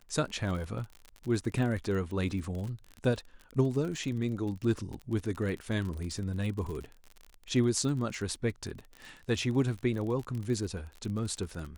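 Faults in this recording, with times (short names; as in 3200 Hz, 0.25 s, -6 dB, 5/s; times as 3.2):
crackle 41/s -36 dBFS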